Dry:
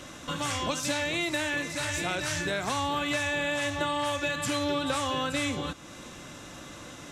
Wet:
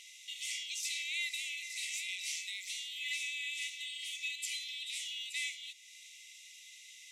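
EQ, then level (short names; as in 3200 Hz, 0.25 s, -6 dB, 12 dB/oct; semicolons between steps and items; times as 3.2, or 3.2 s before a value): brick-wall FIR high-pass 1900 Hz; -4.5 dB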